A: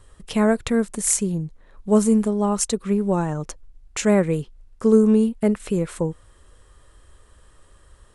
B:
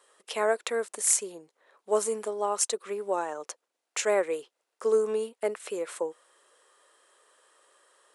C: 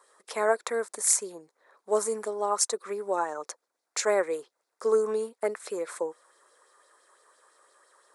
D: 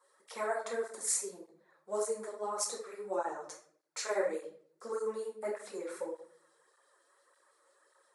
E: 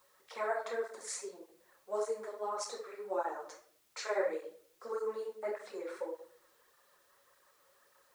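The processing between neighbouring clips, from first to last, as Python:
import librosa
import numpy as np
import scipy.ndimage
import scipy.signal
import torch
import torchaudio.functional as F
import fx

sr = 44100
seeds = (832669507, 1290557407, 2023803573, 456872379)

y1 = scipy.signal.sosfilt(scipy.signal.butter(4, 430.0, 'highpass', fs=sr, output='sos'), x)
y1 = y1 * librosa.db_to_amplitude(-3.0)
y2 = fx.peak_eq(y1, sr, hz=2900.0, db=-13.5, octaves=0.48)
y2 = fx.bell_lfo(y2, sr, hz=5.9, low_hz=940.0, high_hz=4800.0, db=8)
y3 = fx.room_shoebox(y2, sr, seeds[0], volume_m3=68.0, walls='mixed', distance_m=0.93)
y3 = fx.flanger_cancel(y3, sr, hz=1.7, depth_ms=5.4)
y3 = y3 * librosa.db_to_amplitude(-8.5)
y4 = fx.bandpass_edges(y3, sr, low_hz=320.0, high_hz=4800.0)
y4 = fx.quant_dither(y4, sr, seeds[1], bits=12, dither='triangular')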